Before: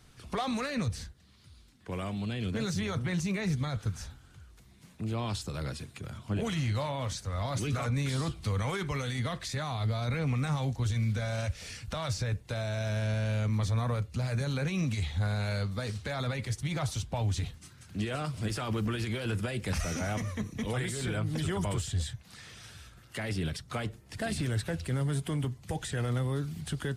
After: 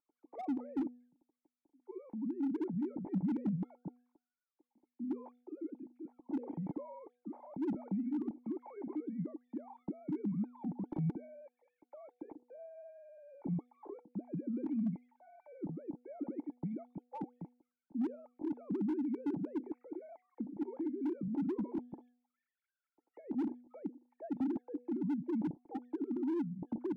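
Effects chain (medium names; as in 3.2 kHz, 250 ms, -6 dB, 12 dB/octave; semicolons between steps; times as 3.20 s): formants replaced by sine waves; cascade formant filter u; band-stop 430 Hz, Q 12; de-hum 244.9 Hz, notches 3; slew-rate limiter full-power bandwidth 6.9 Hz; trim +1.5 dB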